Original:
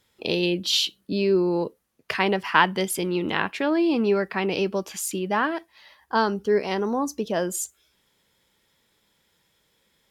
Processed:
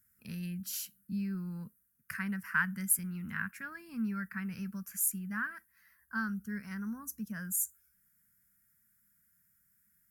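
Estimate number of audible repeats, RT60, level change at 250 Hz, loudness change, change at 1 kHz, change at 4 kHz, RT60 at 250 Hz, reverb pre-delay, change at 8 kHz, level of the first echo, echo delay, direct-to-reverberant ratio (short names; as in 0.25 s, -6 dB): none, none, -11.5 dB, -11.5 dB, -19.5 dB, -26.0 dB, none, none, -3.0 dB, none, none, none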